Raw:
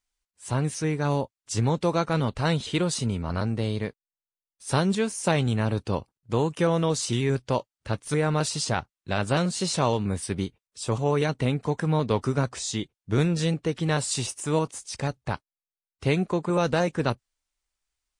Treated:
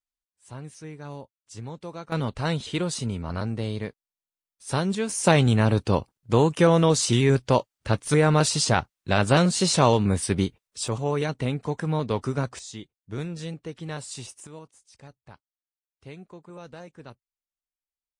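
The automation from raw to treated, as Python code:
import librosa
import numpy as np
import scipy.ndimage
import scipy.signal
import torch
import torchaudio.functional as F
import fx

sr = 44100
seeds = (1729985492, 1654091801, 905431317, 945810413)

y = fx.gain(x, sr, db=fx.steps((0.0, -13.5), (2.12, -2.0), (5.09, 5.0), (10.88, -2.0), (12.59, -9.5), (14.47, -19.0)))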